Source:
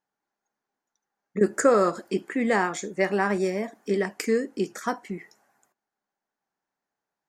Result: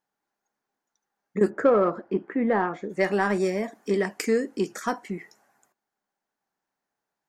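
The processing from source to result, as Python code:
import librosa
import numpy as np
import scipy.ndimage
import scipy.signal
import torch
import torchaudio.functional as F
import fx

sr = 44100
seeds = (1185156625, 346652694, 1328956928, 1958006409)

p1 = fx.lowpass(x, sr, hz=1400.0, slope=12, at=(1.49, 2.89), fade=0.02)
p2 = 10.0 ** (-19.5 / 20.0) * np.tanh(p1 / 10.0 ** (-19.5 / 20.0))
p3 = p1 + (p2 * 10.0 ** (-6.5 / 20.0))
y = p3 * 10.0 ** (-2.0 / 20.0)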